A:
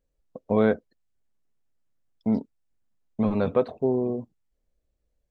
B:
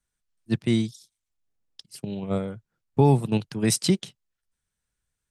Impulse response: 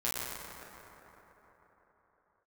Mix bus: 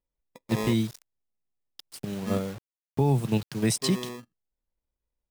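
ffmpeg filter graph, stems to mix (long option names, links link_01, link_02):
-filter_complex "[0:a]acrusher=samples=30:mix=1:aa=0.000001,volume=-10.5dB,asplit=3[link_01][link_02][link_03];[link_01]atrim=end=2.42,asetpts=PTS-STARTPTS,afade=type=out:start_time=2.416:duration=0.004:curve=hsin[link_04];[link_02]atrim=start=2.42:end=3.62,asetpts=PTS-STARTPTS,volume=0[link_05];[link_03]atrim=start=3.62,asetpts=PTS-STARTPTS,afade=type=in:duration=0.004:curve=hsin[link_06];[link_04][link_05][link_06]concat=n=3:v=0:a=1[link_07];[1:a]adynamicequalizer=threshold=0.0316:dfrequency=130:dqfactor=4.2:tfrequency=130:tqfactor=4.2:attack=5:release=100:ratio=0.375:range=1.5:mode=boostabove:tftype=bell,acrusher=bits=6:mix=0:aa=0.000001,volume=-1.5dB[link_08];[link_07][link_08]amix=inputs=2:normalize=0,alimiter=limit=-14dB:level=0:latency=1:release=58"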